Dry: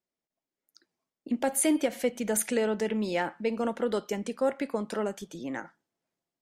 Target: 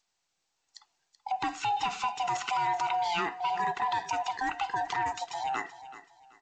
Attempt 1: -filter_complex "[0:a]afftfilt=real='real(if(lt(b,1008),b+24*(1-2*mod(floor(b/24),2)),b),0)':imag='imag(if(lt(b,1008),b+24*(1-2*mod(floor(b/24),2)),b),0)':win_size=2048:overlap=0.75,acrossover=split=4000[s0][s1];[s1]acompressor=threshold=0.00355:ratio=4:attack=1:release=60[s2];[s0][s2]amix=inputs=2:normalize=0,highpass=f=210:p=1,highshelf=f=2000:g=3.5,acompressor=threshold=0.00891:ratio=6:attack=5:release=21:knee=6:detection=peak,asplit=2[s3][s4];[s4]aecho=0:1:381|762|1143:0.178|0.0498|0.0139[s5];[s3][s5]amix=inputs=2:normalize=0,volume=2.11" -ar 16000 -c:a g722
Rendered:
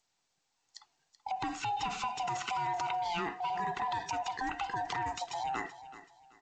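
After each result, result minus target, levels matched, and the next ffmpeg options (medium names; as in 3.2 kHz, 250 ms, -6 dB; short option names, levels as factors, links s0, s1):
compression: peak gain reduction +7 dB; 250 Hz band +4.0 dB
-filter_complex "[0:a]afftfilt=real='real(if(lt(b,1008),b+24*(1-2*mod(floor(b/24),2)),b),0)':imag='imag(if(lt(b,1008),b+24*(1-2*mod(floor(b/24),2)),b),0)':win_size=2048:overlap=0.75,acrossover=split=4000[s0][s1];[s1]acompressor=threshold=0.00355:ratio=4:attack=1:release=60[s2];[s0][s2]amix=inputs=2:normalize=0,highpass=f=210:p=1,highshelf=f=2000:g=3.5,acompressor=threshold=0.0188:ratio=6:attack=5:release=21:knee=6:detection=peak,asplit=2[s3][s4];[s4]aecho=0:1:381|762|1143:0.178|0.0498|0.0139[s5];[s3][s5]amix=inputs=2:normalize=0,volume=2.11" -ar 16000 -c:a g722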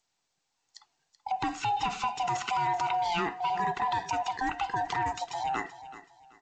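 250 Hz band +4.0 dB
-filter_complex "[0:a]afftfilt=real='real(if(lt(b,1008),b+24*(1-2*mod(floor(b/24),2)),b),0)':imag='imag(if(lt(b,1008),b+24*(1-2*mod(floor(b/24),2)),b),0)':win_size=2048:overlap=0.75,acrossover=split=4000[s0][s1];[s1]acompressor=threshold=0.00355:ratio=4:attack=1:release=60[s2];[s0][s2]amix=inputs=2:normalize=0,highpass=f=620:p=1,highshelf=f=2000:g=3.5,acompressor=threshold=0.0188:ratio=6:attack=5:release=21:knee=6:detection=peak,asplit=2[s3][s4];[s4]aecho=0:1:381|762|1143:0.178|0.0498|0.0139[s5];[s3][s5]amix=inputs=2:normalize=0,volume=2.11" -ar 16000 -c:a g722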